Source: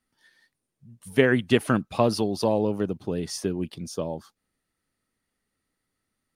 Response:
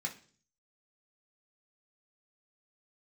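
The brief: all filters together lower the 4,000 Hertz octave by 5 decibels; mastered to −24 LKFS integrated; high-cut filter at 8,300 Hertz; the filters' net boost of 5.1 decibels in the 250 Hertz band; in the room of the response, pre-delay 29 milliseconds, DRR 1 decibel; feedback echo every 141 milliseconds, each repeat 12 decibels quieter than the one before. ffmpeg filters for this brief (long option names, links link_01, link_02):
-filter_complex "[0:a]lowpass=8300,equalizer=frequency=250:width_type=o:gain=6,equalizer=frequency=4000:width_type=o:gain=-7,aecho=1:1:141|282|423:0.251|0.0628|0.0157,asplit=2[link_01][link_02];[1:a]atrim=start_sample=2205,adelay=29[link_03];[link_02][link_03]afir=irnorm=-1:irlink=0,volume=-2dB[link_04];[link_01][link_04]amix=inputs=2:normalize=0,volume=-4dB"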